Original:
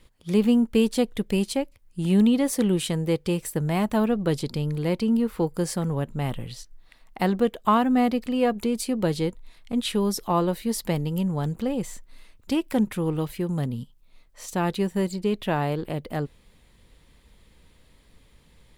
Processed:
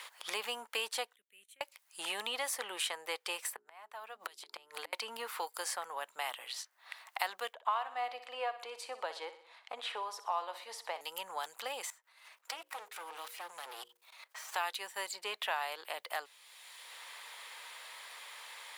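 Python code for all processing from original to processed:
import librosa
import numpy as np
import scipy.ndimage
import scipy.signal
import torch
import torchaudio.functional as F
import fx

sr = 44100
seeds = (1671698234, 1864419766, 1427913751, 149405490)

y = fx.chain(x, sr, fx.tone_stack(knobs='10-0-1'),
    fx.level_steps(step_db=14),
    fx.fixed_phaser(hz=2100.0, stages=4), at=(1.16, 1.61))
y = fx.chain(y, sr, fx.gate_flip(shuts_db=-19.0, range_db=-34),
    fx.hum_notches(base_hz=60, count=7),
    fx.band_squash(depth_pct=100), at=(3.53, 4.93))
y = fx.chain(y, sr, fx.bandpass_q(hz=620.0, q=0.92),
    fx.echo_feedback(ms=61, feedback_pct=46, wet_db=-13.5), at=(7.53, 11.01))
y = fx.chain(y, sr, fx.lower_of_two(delay_ms=6.3),
    fx.level_steps(step_db=19),
    fx.hum_notches(base_hz=60, count=9), at=(11.9, 14.56))
y = scipy.signal.sosfilt(scipy.signal.butter(4, 810.0, 'highpass', fs=sr, output='sos'), y)
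y = fx.band_squash(y, sr, depth_pct=70)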